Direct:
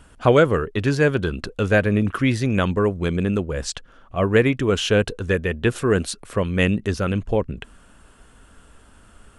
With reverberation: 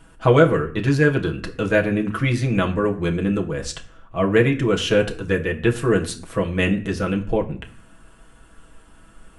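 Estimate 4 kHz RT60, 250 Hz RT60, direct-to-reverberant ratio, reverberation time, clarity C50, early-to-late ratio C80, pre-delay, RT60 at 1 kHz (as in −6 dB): 0.35 s, 0.75 s, −0.5 dB, 0.50 s, 14.5 dB, 18.0 dB, 6 ms, 0.50 s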